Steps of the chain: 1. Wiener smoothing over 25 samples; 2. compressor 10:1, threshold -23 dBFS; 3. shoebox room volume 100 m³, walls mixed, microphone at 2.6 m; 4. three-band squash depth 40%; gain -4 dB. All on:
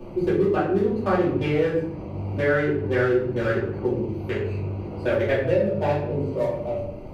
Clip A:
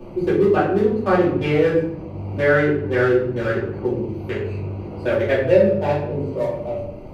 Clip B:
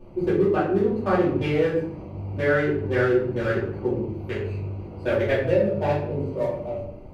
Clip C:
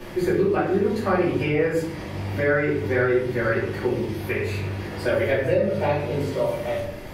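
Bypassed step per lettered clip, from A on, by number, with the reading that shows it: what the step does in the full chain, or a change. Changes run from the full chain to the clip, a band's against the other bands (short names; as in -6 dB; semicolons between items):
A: 2, mean gain reduction 1.5 dB; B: 4, momentary loudness spread change +3 LU; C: 1, 4 kHz band +3.5 dB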